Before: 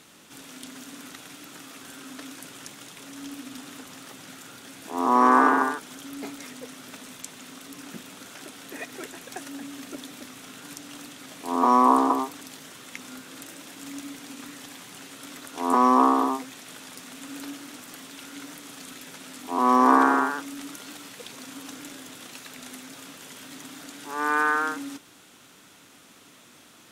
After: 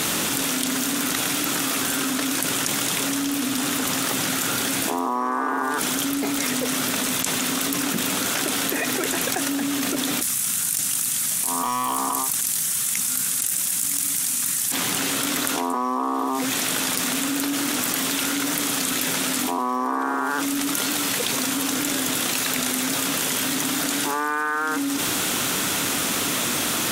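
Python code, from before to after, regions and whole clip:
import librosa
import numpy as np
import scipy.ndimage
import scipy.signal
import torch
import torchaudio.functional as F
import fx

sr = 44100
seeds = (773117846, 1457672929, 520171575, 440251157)

y = fx.chain(x, sr, fx.curve_eq(hz=(200.0, 290.0, 1700.0, 3600.0, 9700.0, 14000.0), db=(0, -16, -2, 0, 14, 10)),
    fx.clip_hard(threshold_db=-22.0),
    fx.over_compress(threshold_db=-38.0, ratio=-1.0), at=(10.21, 14.72))
y = fx.high_shelf(y, sr, hz=10000.0, db=9.0)
y = fx.env_flatten(y, sr, amount_pct=100)
y = y * librosa.db_to_amplitude(-8.5)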